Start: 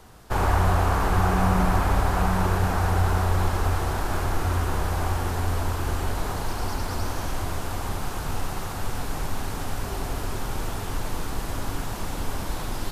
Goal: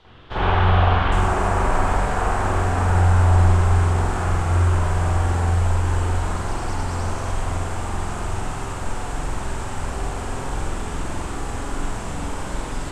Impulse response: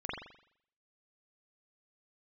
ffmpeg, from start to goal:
-filter_complex "[0:a]asetnsamples=nb_out_samples=441:pad=0,asendcmd='1.12 lowpass f 8000',lowpass=frequency=3400:width_type=q:width=4[link_01];[1:a]atrim=start_sample=2205,asetrate=40572,aresample=44100[link_02];[link_01][link_02]afir=irnorm=-1:irlink=0,volume=-1.5dB"

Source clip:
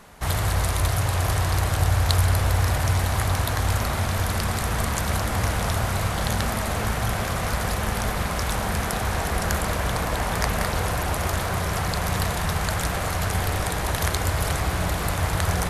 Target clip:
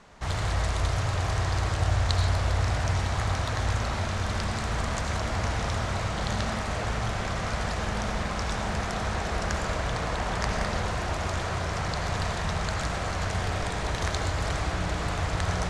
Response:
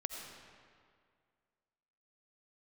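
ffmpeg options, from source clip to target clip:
-filter_complex "[0:a]lowpass=frequency=7400:width=0.5412,lowpass=frequency=7400:width=1.3066[link_01];[1:a]atrim=start_sample=2205,afade=type=out:start_time=0.22:duration=0.01,atrim=end_sample=10143[link_02];[link_01][link_02]afir=irnorm=-1:irlink=0,volume=-3dB"

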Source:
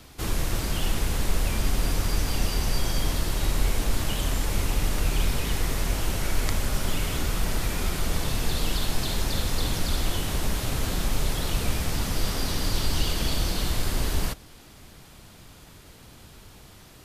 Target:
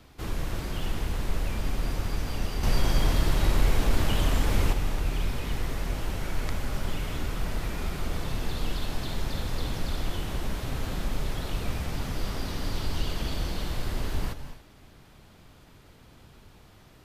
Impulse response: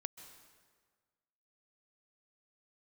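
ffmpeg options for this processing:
-filter_complex "[0:a]equalizer=frequency=10000:width_type=o:width=2.1:gain=-9,asettb=1/sr,asplit=3[link_01][link_02][link_03];[link_01]atrim=end=2.634[link_04];[link_02]atrim=start=2.63:end=4.73,asetpts=PTS-STARTPTS,afade=type=in:duration=0.004:curve=qsin,afade=type=out:start_time=2.096:duration=0.004:curve=qsin,acontrast=68[link_05];[link_03]atrim=start=4.726[link_06];[link_04][link_05]acrossfade=duration=0.004:curve1=hsin:curve2=qsin[link_07];[link_07][link_06]acrossfade=duration=0.004:curve1=qsin:curve2=hsin[link_08];[1:a]atrim=start_sample=2205,afade=type=out:start_time=0.29:duration=0.01,atrim=end_sample=13230,asetrate=36603,aresample=44100[link_09];[link_08][link_09]afir=irnorm=-1:irlink=0,volume=-1.5dB"

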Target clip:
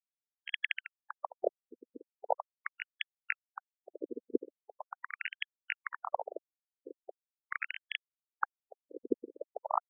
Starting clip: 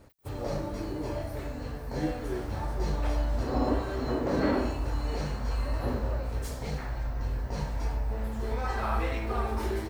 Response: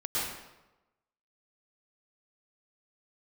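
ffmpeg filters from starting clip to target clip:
-filter_complex "[0:a]aecho=1:1:2.4:0.97,aresample=8000,aresample=44100,acompressor=threshold=-29dB:ratio=12,aresample=11025,acrusher=samples=31:mix=1:aa=0.000001:lfo=1:lforange=31:lforate=1.2,aresample=44100,lowshelf=frequency=460:gain=3,aeval=exprs='0.0891*(cos(1*acos(clip(val(0)/0.0891,-1,1)))-cos(1*PI/2))+0.00708*(cos(2*acos(clip(val(0)/0.0891,-1,1)))-cos(2*PI/2))+0.02*(cos(4*acos(clip(val(0)/0.0891,-1,1)))-cos(4*PI/2))+0.01*(cos(7*acos(clip(val(0)/0.0891,-1,1)))-cos(7*PI/2))+0.00794*(cos(8*acos(clip(val(0)/0.0891,-1,1)))-cos(8*PI/2))':channel_layout=same,asplit=2[link_01][link_02];[1:a]atrim=start_sample=2205,lowpass=2600[link_03];[link_02][link_03]afir=irnorm=-1:irlink=0,volume=-16dB[link_04];[link_01][link_04]amix=inputs=2:normalize=0,acrossover=split=440[link_05][link_06];[link_05]acompressor=threshold=-31dB:ratio=8[link_07];[link_07][link_06]amix=inputs=2:normalize=0,highpass=41,aecho=1:1:50|115|199.5|309.4|452.2:0.631|0.398|0.251|0.158|0.1,acrusher=bits=3:mix=0:aa=0.000001,afftfilt=real='re*between(b*sr/1024,340*pow(2400/340,0.5+0.5*sin(2*PI*0.41*pts/sr))/1.41,340*pow(2400/340,0.5+0.5*sin(2*PI*0.41*pts/sr))*1.41)':imag='im*between(b*sr/1024,340*pow(2400/340,0.5+0.5*sin(2*PI*0.41*pts/sr))/1.41,340*pow(2400/340,0.5+0.5*sin(2*PI*0.41*pts/sr))*1.41)':win_size=1024:overlap=0.75,volume=15.5dB"

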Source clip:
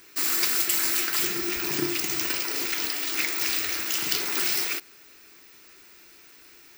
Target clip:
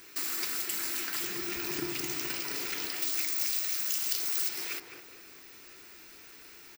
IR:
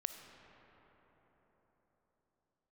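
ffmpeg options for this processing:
-filter_complex "[0:a]asettb=1/sr,asplit=3[link_01][link_02][link_03];[link_01]atrim=end=3.024[link_04];[link_02]atrim=start=3.02:end=4.49,asetpts=PTS-STARTPTS,afade=type=in:duration=0.004:curve=qsin,afade=type=out:start_time=1.466:duration=0.004:curve=qsin,bass=frequency=250:gain=-9,treble=frequency=4000:gain=11[link_05];[link_03]atrim=start=4.486[link_06];[link_04][link_05]acrossfade=duration=0.004:curve1=hsin:curve2=qsin[link_07];[link_07][link_06]acrossfade=duration=0.004:curve1=qsin:curve2=hsin,acompressor=threshold=-35dB:ratio=2.5,asplit=2[link_08][link_09];[link_09]adelay=211,lowpass=frequency=1200:poles=1,volume=-4dB,asplit=2[link_10][link_11];[link_11]adelay=211,lowpass=frequency=1200:poles=1,volume=0.51,asplit=2[link_12][link_13];[link_13]adelay=211,lowpass=frequency=1200:poles=1,volume=0.51,asplit=2[link_14][link_15];[link_15]adelay=211,lowpass=frequency=1200:poles=1,volume=0.51,asplit=2[link_16][link_17];[link_17]adelay=211,lowpass=frequency=1200:poles=1,volume=0.51,asplit=2[link_18][link_19];[link_19]adelay=211,lowpass=frequency=1200:poles=1,volume=0.51,asplit=2[link_20][link_21];[link_21]adelay=211,lowpass=frequency=1200:poles=1,volume=0.51[link_22];[link_08][link_10][link_12][link_14][link_16][link_18][link_20][link_22]amix=inputs=8:normalize=0"

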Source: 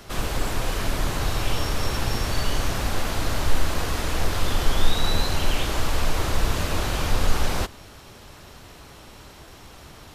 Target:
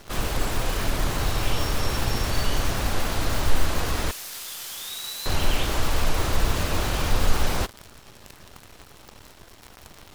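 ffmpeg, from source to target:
ffmpeg -i in.wav -filter_complex "[0:a]asettb=1/sr,asplit=3[link_01][link_02][link_03];[link_01]atrim=end=4.114[link_04];[link_02]atrim=start=4.11:end=5.26,asetpts=PTS-STARTPTS,afade=type=in:duration=0.004:curve=qsin,afade=type=out:start_time=1.146:duration=0.004:curve=qsin,aderivative[link_05];[link_03]atrim=start=5.256[link_06];[link_04][link_05]acrossfade=duration=0.004:curve1=hsin:curve2=qsin[link_07];[link_07][link_06]acrossfade=duration=0.004:curve1=qsin:curve2=hsin,acrusher=bits=7:dc=4:mix=0:aa=0.000001" out.wav

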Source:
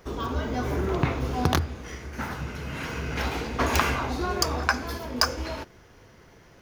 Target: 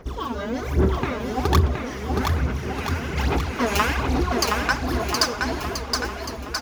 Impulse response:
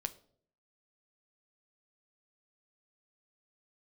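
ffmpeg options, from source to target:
-af "aphaser=in_gain=1:out_gain=1:delay=5:decay=0.77:speed=1.2:type=sinusoidal,aecho=1:1:720|1332|1852|2294|2670:0.631|0.398|0.251|0.158|0.1,volume=-2.5dB"

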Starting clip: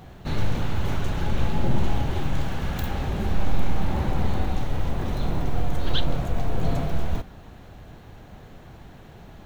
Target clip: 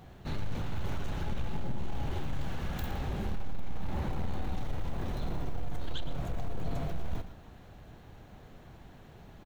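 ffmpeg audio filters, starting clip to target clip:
ffmpeg -i in.wav -filter_complex "[0:a]acompressor=threshold=-17dB:ratio=6,asoftclip=type=tanh:threshold=-16.5dB,asplit=2[link_01][link_02];[link_02]aecho=0:1:115:0.224[link_03];[link_01][link_03]amix=inputs=2:normalize=0,volume=-7dB" out.wav

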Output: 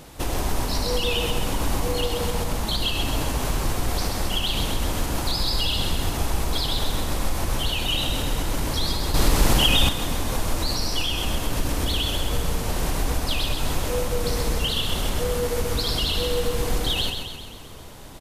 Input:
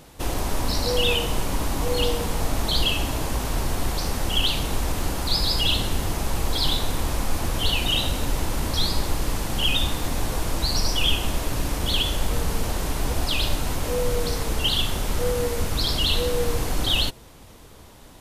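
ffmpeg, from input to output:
ffmpeg -i in.wav -filter_complex "[0:a]alimiter=limit=-19dB:level=0:latency=1:release=181,asplit=2[link_01][link_02];[link_02]aecho=0:1:131|262|393|524|655|786|917:0.501|0.281|0.157|0.088|0.0493|0.0276|0.0155[link_03];[link_01][link_03]amix=inputs=2:normalize=0,asettb=1/sr,asplit=3[link_04][link_05][link_06];[link_04]atrim=end=9.144[link_07];[link_05]atrim=start=9.14:end=9.89,asetpts=PTS-STARTPTS,afade=type=in:duration=0.004:curve=qsin,afade=type=out:start_time=0.746:duration=0.004:curve=qsin,acontrast=77[link_08];[link_06]atrim=start=9.886[link_09];[link_07][link_08]acrossfade=duration=0.004:curve1=hsin:curve2=qsin[link_10];[link_10][link_09]acrossfade=duration=0.004:curve1=qsin:curve2=hsin,volume=3.5dB" out.wav

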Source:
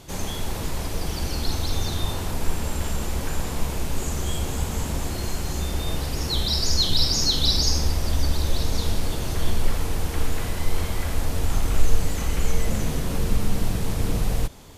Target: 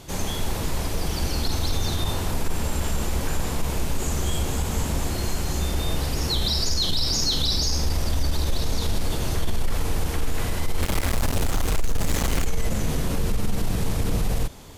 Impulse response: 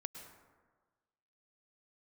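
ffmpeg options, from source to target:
-filter_complex "[0:a]asettb=1/sr,asplit=3[link_01][link_02][link_03];[link_01]atrim=end=10.814[link_04];[link_02]atrim=start=10.81:end=12.46,asetpts=PTS-STARTPTS,afade=type=in:duration=0.004:curve=qsin,afade=type=out:start_time=1.646:duration=0.004:curve=qsin,acrusher=bits=3:mix=0:aa=0.5[link_05];[link_03]atrim=start=12.456[link_06];[link_04][link_05]acrossfade=duration=0.004:curve1=hsin:curve2=qsin[link_07];[link_07][link_06]acrossfade=duration=0.004:curve1=qsin:curve2=hsin,acontrast=67,alimiter=limit=-10dB:level=0:latency=1:release=32,volume=-4.5dB"

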